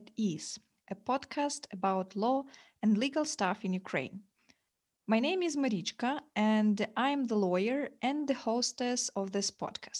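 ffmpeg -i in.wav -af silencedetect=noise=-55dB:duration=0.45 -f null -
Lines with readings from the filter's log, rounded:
silence_start: 4.51
silence_end: 5.08 | silence_duration: 0.57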